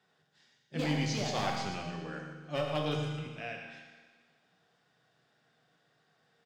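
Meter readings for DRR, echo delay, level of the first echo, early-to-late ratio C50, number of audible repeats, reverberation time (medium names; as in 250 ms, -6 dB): 0.0 dB, 114 ms, -10.0 dB, 2.5 dB, 1, 1.5 s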